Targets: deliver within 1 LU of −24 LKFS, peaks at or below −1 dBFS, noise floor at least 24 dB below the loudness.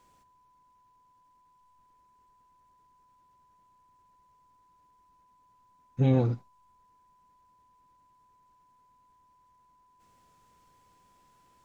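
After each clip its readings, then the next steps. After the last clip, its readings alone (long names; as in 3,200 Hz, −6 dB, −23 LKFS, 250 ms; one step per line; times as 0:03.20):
interfering tone 1,000 Hz; level of the tone −62 dBFS; integrated loudness −27.5 LKFS; sample peak −12.5 dBFS; target loudness −24.0 LKFS
→ notch filter 1,000 Hz, Q 30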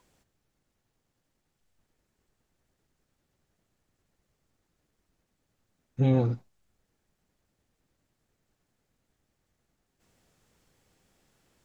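interfering tone none found; integrated loudness −27.0 LKFS; sample peak −12.5 dBFS; target loudness −24.0 LKFS
→ level +3 dB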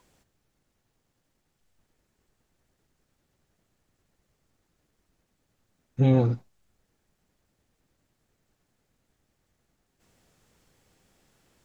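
integrated loudness −24.0 LKFS; sample peak −9.5 dBFS; background noise floor −76 dBFS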